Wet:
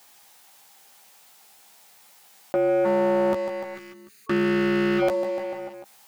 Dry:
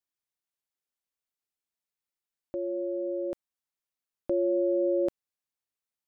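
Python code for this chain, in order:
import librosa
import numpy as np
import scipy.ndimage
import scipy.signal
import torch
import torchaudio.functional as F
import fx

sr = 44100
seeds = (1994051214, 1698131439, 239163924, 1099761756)

y = fx.lower_of_two(x, sr, delay_ms=0.45, at=(2.84, 4.98), fade=0.02)
y = scipy.signal.sosfilt(scipy.signal.butter(2, 77.0, 'highpass', fs=sr, output='sos'), y)
y = fx.echo_feedback(y, sr, ms=148, feedback_pct=55, wet_db=-18.5)
y = 10.0 ** (-20.0 / 20.0) * np.tanh(y / 10.0 ** (-20.0 / 20.0))
y = fx.leveller(y, sr, passes=2)
y = fx.graphic_eq_31(y, sr, hz=(200, 315, 800), db=(5, -6, 11))
y = fx.spec_box(y, sr, start_s=3.75, length_s=1.27, low_hz=450.0, high_hz=1100.0, gain_db=-16)
y = fx.low_shelf(y, sr, hz=250.0, db=-10.5)
y = fx.doubler(y, sr, ms=14.0, db=-5)
y = fx.env_flatten(y, sr, amount_pct=50)
y = y * 10.0 ** (6.0 / 20.0)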